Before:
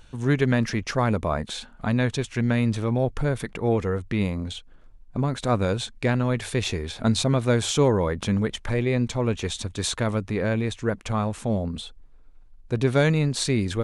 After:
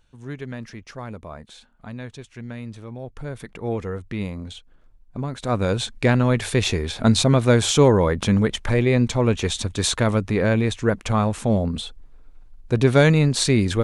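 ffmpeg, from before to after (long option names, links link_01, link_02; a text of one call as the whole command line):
ffmpeg -i in.wav -af "volume=5dB,afade=type=in:start_time=3.02:duration=0.7:silence=0.375837,afade=type=in:start_time=5.37:duration=0.54:silence=0.375837" out.wav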